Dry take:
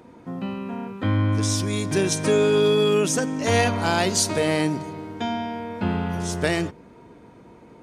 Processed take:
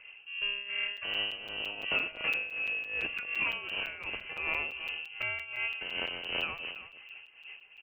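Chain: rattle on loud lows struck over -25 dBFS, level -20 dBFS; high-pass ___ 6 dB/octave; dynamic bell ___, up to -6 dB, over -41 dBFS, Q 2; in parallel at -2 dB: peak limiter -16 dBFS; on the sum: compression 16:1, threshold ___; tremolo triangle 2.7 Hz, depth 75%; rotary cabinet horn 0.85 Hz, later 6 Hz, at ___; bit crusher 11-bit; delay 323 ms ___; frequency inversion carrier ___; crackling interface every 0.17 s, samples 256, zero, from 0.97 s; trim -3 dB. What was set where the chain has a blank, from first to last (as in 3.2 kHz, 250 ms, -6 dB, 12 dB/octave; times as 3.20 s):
100 Hz, 150 Hz, -22 dBFS, 5.01 s, -13 dB, 3 kHz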